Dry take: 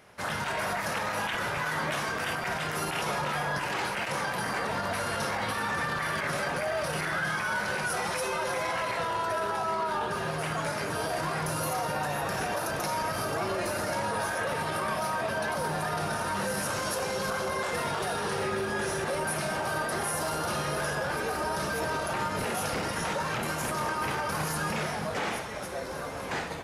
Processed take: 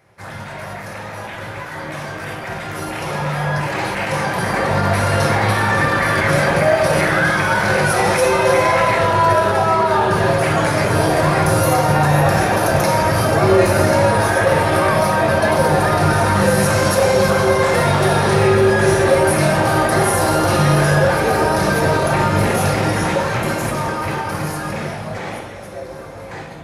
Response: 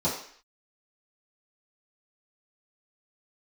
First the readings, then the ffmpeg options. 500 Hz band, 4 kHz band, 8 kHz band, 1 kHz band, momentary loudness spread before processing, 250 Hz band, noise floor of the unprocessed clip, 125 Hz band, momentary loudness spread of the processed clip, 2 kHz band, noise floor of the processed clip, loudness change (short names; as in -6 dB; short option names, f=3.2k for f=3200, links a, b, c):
+16.5 dB, +9.5 dB, +10.0 dB, +13.0 dB, 1 LU, +16.5 dB, -34 dBFS, +19.5 dB, 15 LU, +12.0 dB, -32 dBFS, +14.5 dB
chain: -filter_complex "[0:a]dynaudnorm=f=890:g=9:m=15dB,asplit=2[a][b];[1:a]atrim=start_sample=2205,asetrate=26019,aresample=44100[c];[b][c]afir=irnorm=-1:irlink=0,volume=-14.5dB[d];[a][d]amix=inputs=2:normalize=0,volume=-2.5dB"